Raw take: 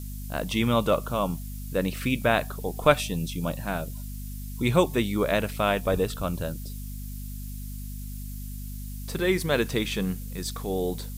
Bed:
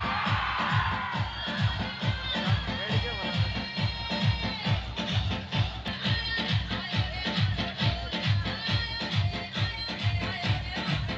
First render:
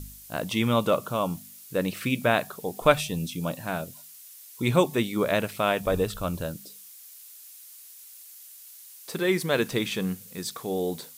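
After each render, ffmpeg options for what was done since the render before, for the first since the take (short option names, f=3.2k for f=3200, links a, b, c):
-af "bandreject=f=50:t=h:w=4,bandreject=f=100:t=h:w=4,bandreject=f=150:t=h:w=4,bandreject=f=200:t=h:w=4,bandreject=f=250:t=h:w=4"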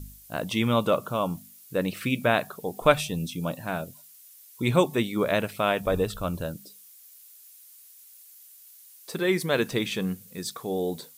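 -af "afftdn=nr=6:nf=-48"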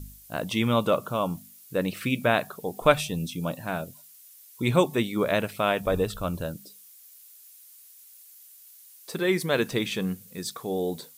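-af anull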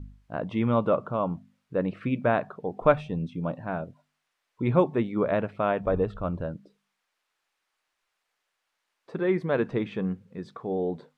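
-af "lowpass=1.4k"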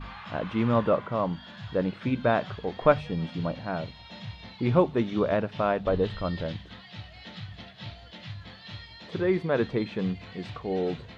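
-filter_complex "[1:a]volume=-14dB[a];[0:a][a]amix=inputs=2:normalize=0"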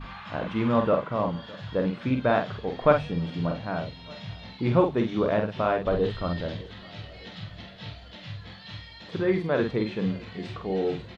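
-filter_complex "[0:a]asplit=2[a][b];[b]adelay=47,volume=-5.5dB[c];[a][c]amix=inputs=2:normalize=0,asplit=2[d][e];[e]adelay=609,lowpass=f=2k:p=1,volume=-21.5dB,asplit=2[f][g];[g]adelay=609,lowpass=f=2k:p=1,volume=0.54,asplit=2[h][i];[i]adelay=609,lowpass=f=2k:p=1,volume=0.54,asplit=2[j][k];[k]adelay=609,lowpass=f=2k:p=1,volume=0.54[l];[d][f][h][j][l]amix=inputs=5:normalize=0"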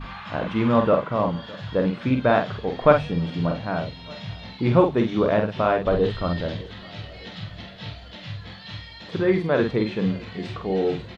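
-af "volume=4dB"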